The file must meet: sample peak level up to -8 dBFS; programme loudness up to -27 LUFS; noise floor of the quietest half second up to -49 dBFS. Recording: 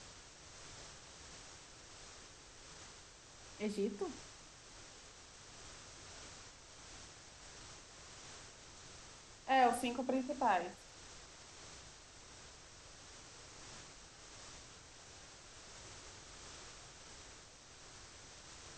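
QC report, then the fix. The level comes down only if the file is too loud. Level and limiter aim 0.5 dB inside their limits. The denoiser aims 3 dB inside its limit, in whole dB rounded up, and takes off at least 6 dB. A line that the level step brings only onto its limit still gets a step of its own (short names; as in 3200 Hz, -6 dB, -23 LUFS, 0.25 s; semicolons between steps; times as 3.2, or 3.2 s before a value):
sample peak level -20.5 dBFS: OK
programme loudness -44.5 LUFS: OK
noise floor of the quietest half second -58 dBFS: OK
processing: none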